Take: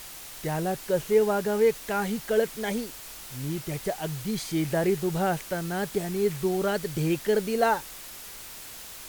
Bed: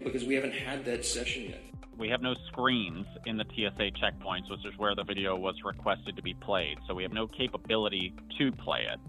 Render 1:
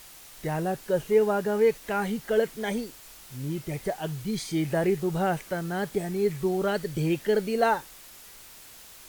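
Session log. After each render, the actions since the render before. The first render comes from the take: noise print and reduce 6 dB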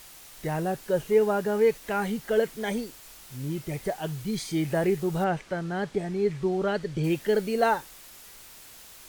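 5.24–7.04 air absorption 81 m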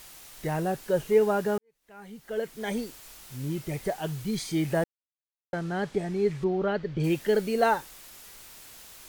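1.58–2.81 fade in quadratic; 4.84–5.53 mute; 6.44–7 air absorption 190 m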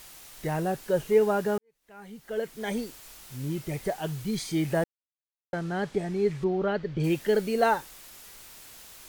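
nothing audible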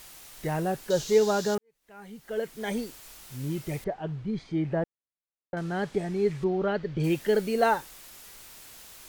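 0.9–1.55 band shelf 5000 Hz +14.5 dB 1.3 oct; 3.84–5.57 tape spacing loss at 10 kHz 35 dB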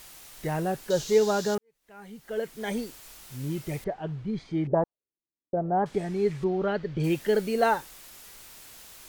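4.67–5.86 envelope low-pass 290–1000 Hz up, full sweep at -25 dBFS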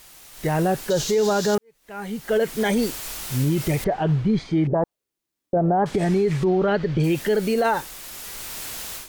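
AGC gain up to 15.5 dB; limiter -13 dBFS, peak gain reduction 11.5 dB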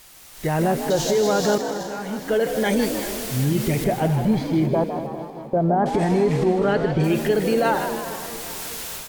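regenerating reverse delay 0.204 s, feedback 68%, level -12 dB; frequency-shifting echo 0.156 s, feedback 52%, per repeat +70 Hz, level -9 dB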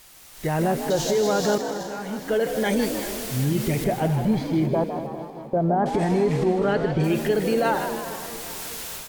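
gain -2 dB

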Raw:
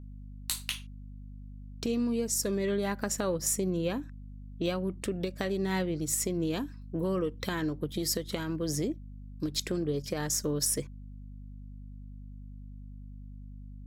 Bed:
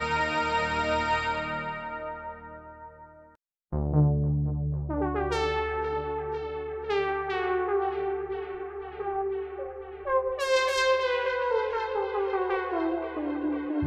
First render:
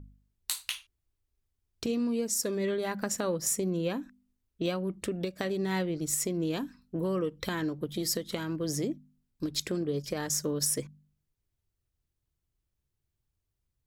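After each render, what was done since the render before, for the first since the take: de-hum 50 Hz, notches 5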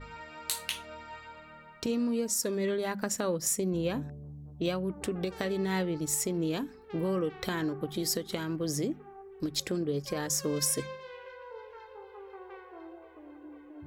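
add bed -19 dB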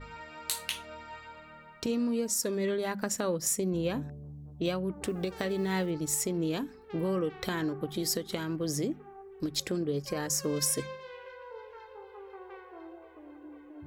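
5.07–5.92 block floating point 7-bit; 10.04–10.49 notch 3500 Hz, Q 6.6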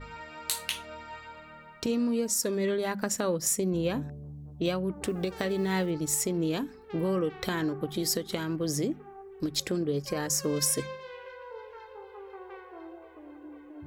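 gain +2 dB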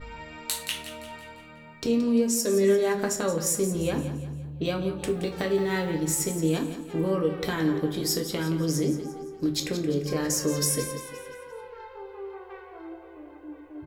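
feedback echo 0.173 s, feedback 46%, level -11.5 dB; shoebox room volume 40 m³, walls mixed, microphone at 0.39 m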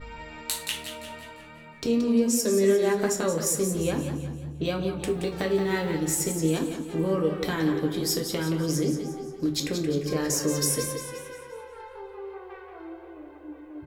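warbling echo 0.179 s, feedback 42%, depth 106 cents, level -10.5 dB

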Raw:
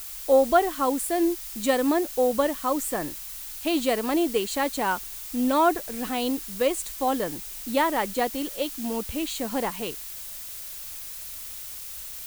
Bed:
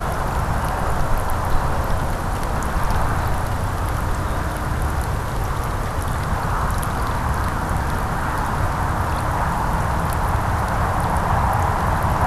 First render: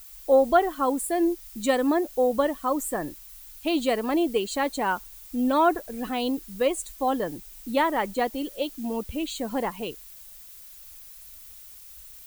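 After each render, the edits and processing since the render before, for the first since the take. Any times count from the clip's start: denoiser 11 dB, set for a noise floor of -38 dBFS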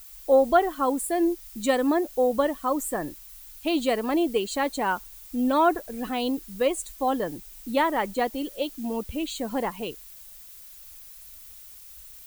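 nothing audible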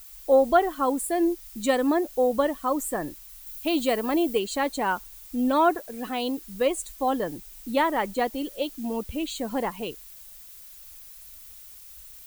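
3.46–4.39 high shelf 11000 Hz +7.5 dB; 5.7–6.45 low shelf 140 Hz -10 dB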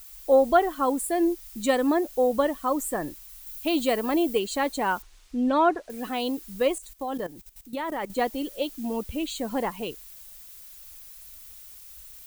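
5.02–5.9 air absorption 93 m; 6.78–8.1 level quantiser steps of 15 dB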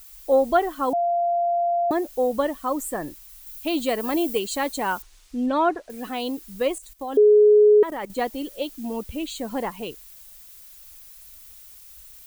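0.93–1.91 bleep 692 Hz -19 dBFS; 4–5.46 high shelf 4500 Hz +5.5 dB; 7.17–7.83 bleep 420 Hz -10.5 dBFS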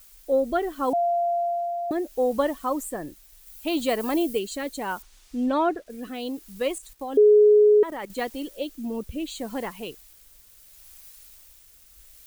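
rotary speaker horn 0.7 Hz; bit-crush 10-bit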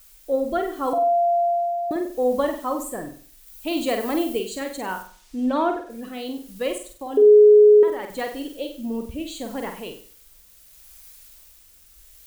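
flutter echo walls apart 8.2 m, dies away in 0.45 s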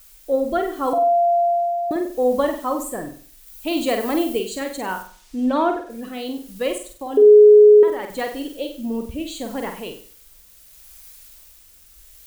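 gain +2.5 dB

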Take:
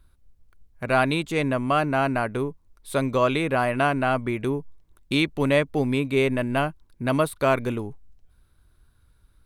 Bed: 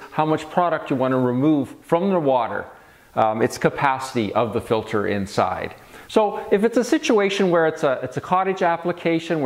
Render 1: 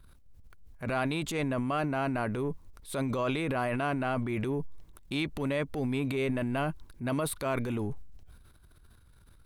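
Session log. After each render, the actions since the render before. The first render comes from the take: compressor, threshold -27 dBFS, peak gain reduction 11.5 dB; transient shaper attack -7 dB, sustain +9 dB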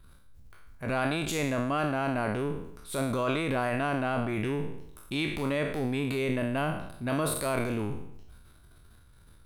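spectral trails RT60 0.75 s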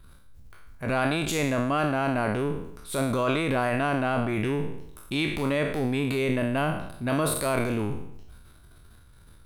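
gain +3.5 dB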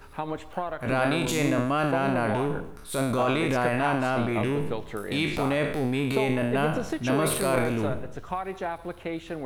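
add bed -12.5 dB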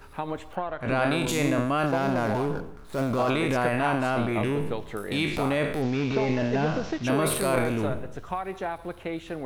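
0.55–1.09 LPF 3800 Hz -> 9400 Hz; 1.86–3.3 median filter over 15 samples; 5.82–7.04 delta modulation 32 kbps, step -38 dBFS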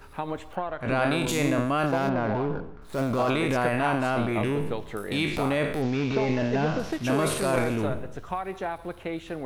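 2.09–2.82 air absorption 220 m; 6.79–7.76 CVSD 64 kbps

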